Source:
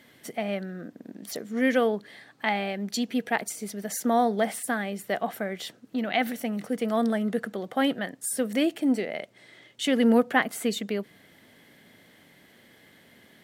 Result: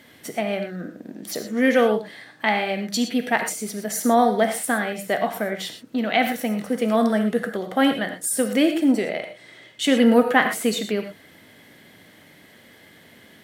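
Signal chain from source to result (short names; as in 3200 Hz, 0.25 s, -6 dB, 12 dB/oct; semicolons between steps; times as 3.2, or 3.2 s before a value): non-linear reverb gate 0.14 s flat, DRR 5.5 dB; gain +5 dB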